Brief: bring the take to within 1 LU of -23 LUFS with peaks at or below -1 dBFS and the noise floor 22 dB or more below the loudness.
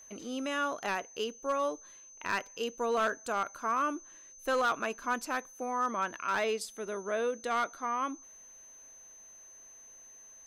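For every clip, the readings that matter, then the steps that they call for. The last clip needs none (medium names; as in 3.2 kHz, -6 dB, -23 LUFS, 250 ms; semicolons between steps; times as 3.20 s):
clipped samples 0.7%; clipping level -23.5 dBFS; steady tone 6.2 kHz; tone level -51 dBFS; loudness -33.5 LUFS; peak level -23.5 dBFS; loudness target -23.0 LUFS
-> clip repair -23.5 dBFS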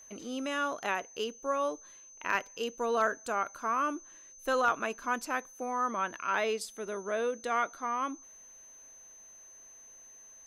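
clipped samples 0.0%; steady tone 6.2 kHz; tone level -51 dBFS
-> band-stop 6.2 kHz, Q 30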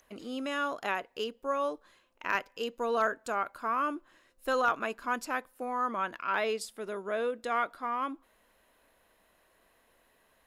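steady tone not found; loudness -33.0 LUFS; peak level -14.5 dBFS; loudness target -23.0 LUFS
-> trim +10 dB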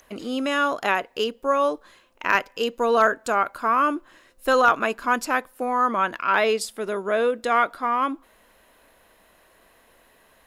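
loudness -23.0 LUFS; peak level -4.5 dBFS; noise floor -58 dBFS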